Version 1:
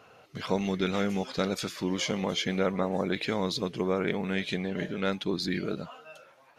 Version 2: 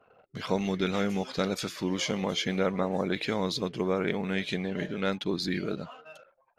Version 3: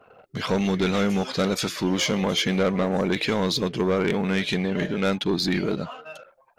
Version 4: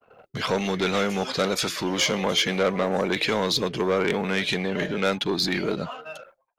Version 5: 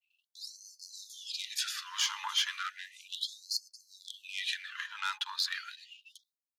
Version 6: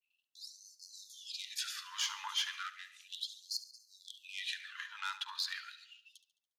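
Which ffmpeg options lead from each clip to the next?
-af "anlmdn=0.00158"
-af "asoftclip=type=tanh:threshold=-24dB,volume=8.5dB"
-filter_complex "[0:a]agate=range=-33dB:threshold=-48dB:ratio=3:detection=peak,acrossover=split=370|710|3500[a][b][c][d];[a]alimiter=level_in=4dB:limit=-24dB:level=0:latency=1,volume=-4dB[e];[e][b][c][d]amix=inputs=4:normalize=0,volume=2dB"
-af "bandreject=f=2.2k:w=5.9,afftfilt=real='re*gte(b*sr/1024,820*pow(4300/820,0.5+0.5*sin(2*PI*0.34*pts/sr)))':imag='im*gte(b*sr/1024,820*pow(4300/820,0.5+0.5*sin(2*PI*0.34*pts/sr)))':win_size=1024:overlap=0.75,volume=-6dB"
-af "aecho=1:1:71|142|213|284|355:0.178|0.0871|0.0427|0.0209|0.0103,volume=-5dB"

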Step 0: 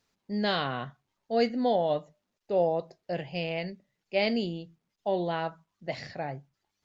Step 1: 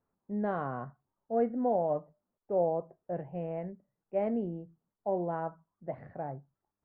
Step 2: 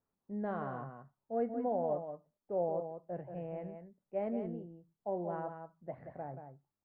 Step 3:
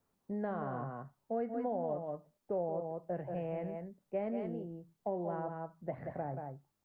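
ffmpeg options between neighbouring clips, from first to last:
-af "lowpass=f=1.3k:w=0.5412,lowpass=f=1.3k:w=1.3066,volume=-3dB"
-af "aecho=1:1:180:0.422,volume=-5.5dB"
-filter_complex "[0:a]acrossover=split=400|1100[a][b][c];[a]acompressor=threshold=-48dB:ratio=4[d];[b]acompressor=threshold=-48dB:ratio=4[e];[c]acompressor=threshold=-59dB:ratio=4[f];[d][e][f]amix=inputs=3:normalize=0,volume=8dB"

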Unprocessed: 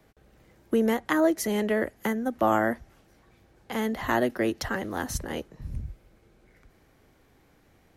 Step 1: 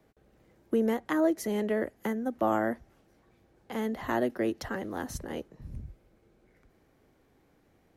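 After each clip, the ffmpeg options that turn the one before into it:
-af "equalizer=f=350:w=0.43:g=5.5,volume=-8dB"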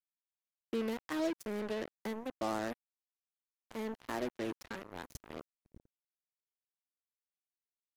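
-af "bandreject=f=350.6:t=h:w=4,bandreject=f=701.2:t=h:w=4,bandreject=f=1.0518k:t=h:w=4,bandreject=f=1.4024k:t=h:w=4,bandreject=f=1.753k:t=h:w=4,bandreject=f=2.1036k:t=h:w=4,bandreject=f=2.4542k:t=h:w=4,bandreject=f=2.8048k:t=h:w=4,bandreject=f=3.1554k:t=h:w=4,bandreject=f=3.506k:t=h:w=4,bandreject=f=3.8566k:t=h:w=4,bandreject=f=4.2072k:t=h:w=4,bandreject=f=4.5578k:t=h:w=4,bandreject=f=4.9084k:t=h:w=4,bandreject=f=5.259k:t=h:w=4,bandreject=f=5.6096k:t=h:w=4,bandreject=f=5.9602k:t=h:w=4,bandreject=f=6.3108k:t=h:w=4,bandreject=f=6.6614k:t=h:w=4,bandreject=f=7.012k:t=h:w=4,bandreject=f=7.3626k:t=h:w=4,bandreject=f=7.7132k:t=h:w=4,bandreject=f=8.0638k:t=h:w=4,bandreject=f=8.4144k:t=h:w=4,bandreject=f=8.765k:t=h:w=4,bandreject=f=9.1156k:t=h:w=4,bandreject=f=9.4662k:t=h:w=4,bandreject=f=9.8168k:t=h:w=4,bandreject=f=10.1674k:t=h:w=4,bandreject=f=10.518k:t=h:w=4,bandreject=f=10.8686k:t=h:w=4,bandreject=f=11.2192k:t=h:w=4,bandreject=f=11.5698k:t=h:w=4,bandreject=f=11.9204k:t=h:w=4,bandreject=f=12.271k:t=h:w=4,bandreject=f=12.6216k:t=h:w=4,bandreject=f=12.9722k:t=h:w=4,bandreject=f=13.3228k:t=h:w=4,bandreject=f=13.6734k:t=h:w=4,acrusher=bits=4:mix=0:aa=0.5,volume=-9dB"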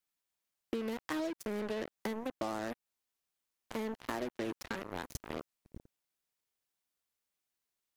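-af "acompressor=threshold=-42dB:ratio=6,volume=8dB"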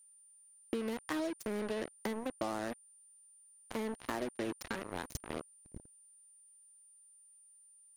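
-af "aeval=exprs='val(0)+0.00112*sin(2*PI*9200*n/s)':c=same"

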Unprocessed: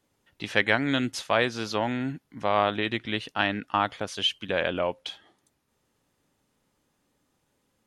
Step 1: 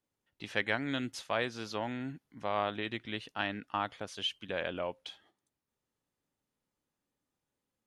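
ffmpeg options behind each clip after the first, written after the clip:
-af "agate=range=-6dB:threshold=-56dB:ratio=16:detection=peak,volume=-9dB"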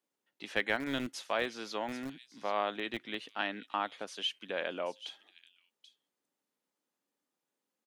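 -filter_complex "[0:a]acrossover=split=190|2900[a][b][c];[a]acrusher=bits=4:dc=4:mix=0:aa=0.000001[d];[c]aecho=1:1:783:0.299[e];[d][b][e]amix=inputs=3:normalize=0"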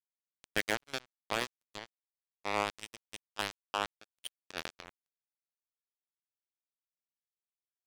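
-af "acrusher=bits=3:mix=0:aa=0.5"

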